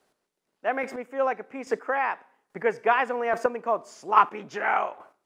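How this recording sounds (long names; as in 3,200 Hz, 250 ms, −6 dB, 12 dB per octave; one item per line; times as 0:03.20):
chopped level 1.2 Hz, depth 60%, duty 15%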